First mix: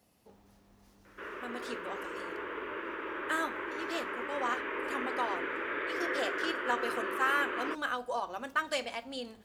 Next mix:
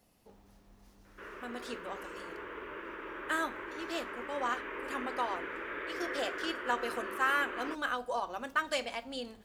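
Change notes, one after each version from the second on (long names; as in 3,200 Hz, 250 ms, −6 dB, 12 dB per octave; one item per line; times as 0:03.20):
background −4.5 dB
master: remove high-pass filter 56 Hz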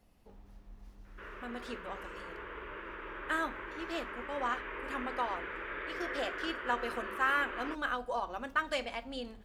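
speech: add bass and treble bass +13 dB, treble −7 dB
master: add parametric band 130 Hz −11 dB 2 octaves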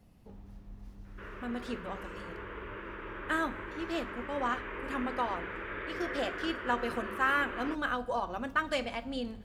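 speech: send +7.5 dB
master: add parametric band 130 Hz +11 dB 2 octaves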